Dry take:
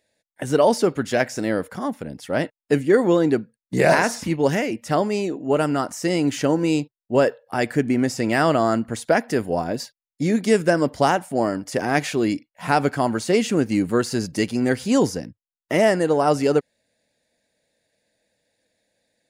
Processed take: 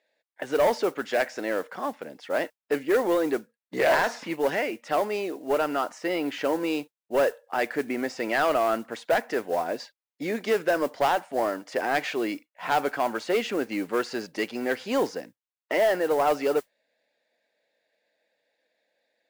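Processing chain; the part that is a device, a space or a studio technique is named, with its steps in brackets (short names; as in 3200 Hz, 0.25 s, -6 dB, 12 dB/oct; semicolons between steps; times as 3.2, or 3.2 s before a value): carbon microphone (BPF 460–3400 Hz; soft clip -15.5 dBFS, distortion -13 dB; modulation noise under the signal 23 dB); 5.98–6.42 bell 6600 Hz -5.5 dB 1 oct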